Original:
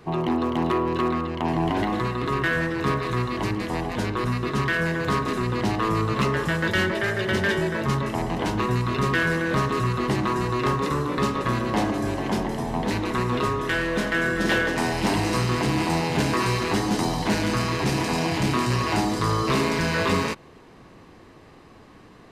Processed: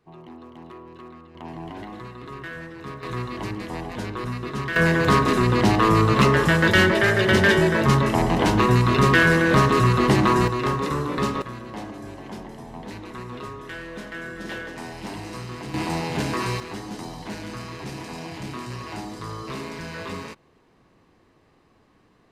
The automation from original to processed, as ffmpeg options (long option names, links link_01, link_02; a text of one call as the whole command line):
ffmpeg -i in.wav -af "asetnsamples=nb_out_samples=441:pad=0,asendcmd='1.35 volume volume -12.5dB;3.03 volume volume -4.5dB;4.76 volume volume 6dB;10.48 volume volume -0.5dB;11.42 volume volume -11.5dB;15.74 volume volume -3dB;16.6 volume volume -11dB',volume=-19dB" out.wav